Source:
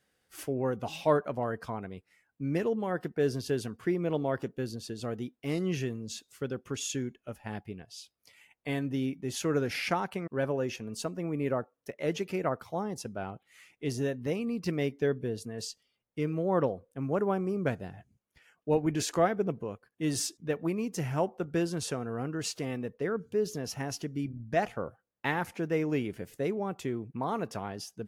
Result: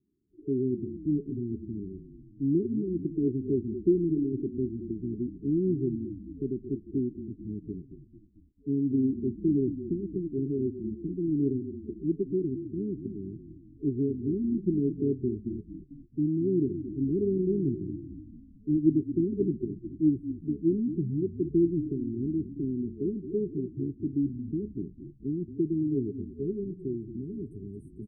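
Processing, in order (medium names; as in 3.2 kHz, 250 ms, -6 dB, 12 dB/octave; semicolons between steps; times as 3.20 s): FFT band-reject 430–8000 Hz; frequency-shifting echo 223 ms, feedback 57%, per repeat -34 Hz, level -11 dB; low-pass sweep 330 Hz -> 3.2 kHz, 25.49–27.65 s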